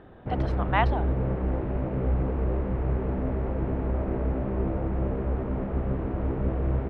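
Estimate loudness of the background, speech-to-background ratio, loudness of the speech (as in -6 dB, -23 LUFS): -29.0 LUFS, -2.0 dB, -31.0 LUFS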